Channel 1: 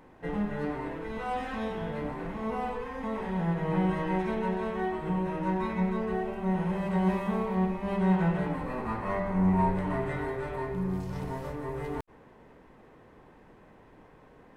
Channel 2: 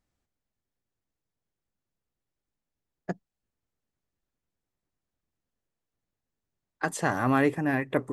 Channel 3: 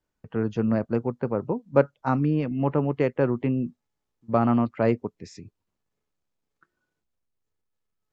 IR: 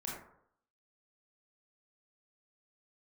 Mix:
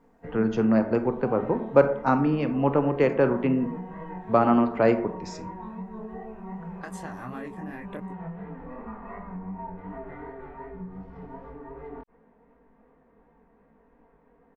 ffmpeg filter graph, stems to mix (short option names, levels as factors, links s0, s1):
-filter_complex "[0:a]lowpass=1600,aecho=1:1:4.3:0.87,volume=0.562[s0];[1:a]volume=0.668[s1];[2:a]deesser=0.95,lowshelf=f=210:g=-6,acrossover=split=190|3000[s2][s3][s4];[s2]acompressor=threshold=0.0141:ratio=6[s5];[s5][s3][s4]amix=inputs=3:normalize=0,volume=1.19,asplit=2[s6][s7];[s7]volume=0.501[s8];[s0][s1]amix=inputs=2:normalize=0,flanger=delay=18:depth=5.9:speed=2.7,acompressor=threshold=0.02:ratio=5,volume=1[s9];[3:a]atrim=start_sample=2205[s10];[s8][s10]afir=irnorm=-1:irlink=0[s11];[s6][s9][s11]amix=inputs=3:normalize=0"